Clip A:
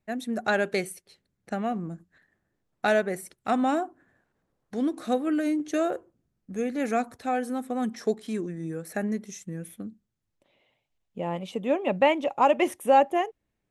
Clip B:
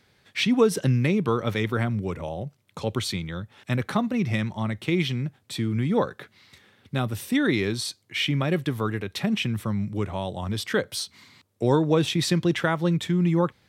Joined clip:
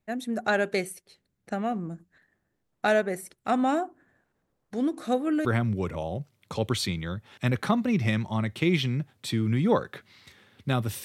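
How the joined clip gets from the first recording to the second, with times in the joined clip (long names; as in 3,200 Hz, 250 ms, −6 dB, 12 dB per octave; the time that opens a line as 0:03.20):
clip A
0:05.45: continue with clip B from 0:01.71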